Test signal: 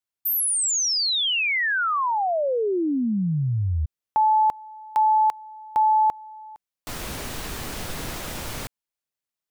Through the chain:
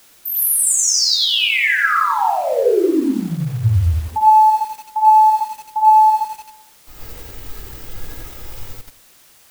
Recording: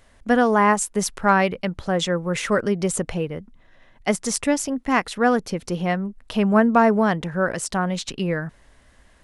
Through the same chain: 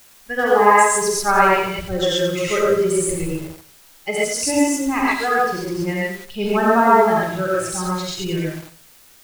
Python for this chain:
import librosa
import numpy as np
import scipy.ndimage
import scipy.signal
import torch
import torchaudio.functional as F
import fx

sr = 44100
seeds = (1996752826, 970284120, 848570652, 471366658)

y = fx.bin_expand(x, sr, power=1.5)
y = fx.noise_reduce_blind(y, sr, reduce_db=12)
y = y + 0.43 * np.pad(y, (int(2.4 * sr / 1000.0), 0))[:len(y)]
y = fx.echo_feedback(y, sr, ms=91, feedback_pct=34, wet_db=-12.5)
y = fx.rev_gated(y, sr, seeds[0], gate_ms=160, shape='rising', drr_db=-6.5)
y = fx.quant_dither(y, sr, seeds[1], bits=8, dither='triangular')
y = fx.echo_crushed(y, sr, ms=88, feedback_pct=55, bits=5, wet_db=-9.0)
y = y * 10.0 ** (-1.0 / 20.0)